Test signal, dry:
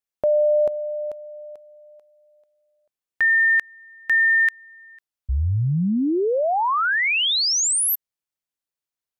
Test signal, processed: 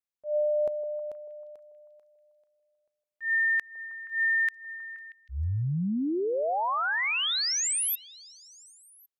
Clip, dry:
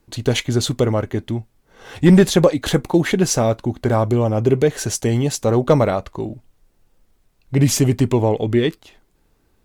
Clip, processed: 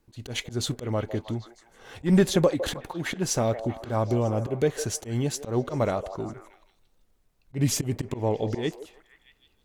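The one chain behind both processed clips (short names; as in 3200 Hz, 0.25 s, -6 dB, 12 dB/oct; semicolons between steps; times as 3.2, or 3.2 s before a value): auto swell 0.131 s; delay with a stepping band-pass 0.158 s, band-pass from 570 Hz, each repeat 0.7 oct, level -9 dB; gain -7.5 dB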